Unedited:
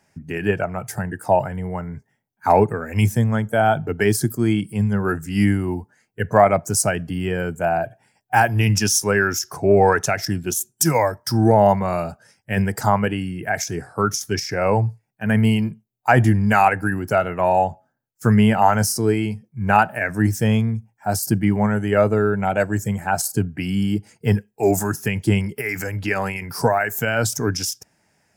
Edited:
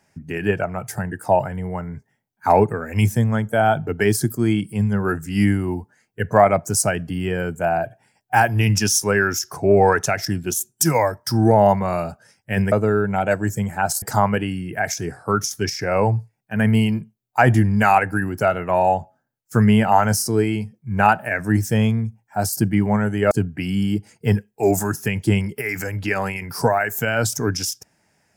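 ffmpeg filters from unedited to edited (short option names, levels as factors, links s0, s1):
-filter_complex "[0:a]asplit=4[s0][s1][s2][s3];[s0]atrim=end=12.722[s4];[s1]atrim=start=22.008:end=23.312[s5];[s2]atrim=start=12.718:end=22.012[s6];[s3]atrim=start=23.308[s7];[s4][s5]acrossfade=d=0.004:c1=hsin:c2=hsin[s8];[s8][s6]acrossfade=d=0.004:c1=hsin:c2=hsin[s9];[s9][s7]acrossfade=d=0.004:c1=hsin:c2=hsin"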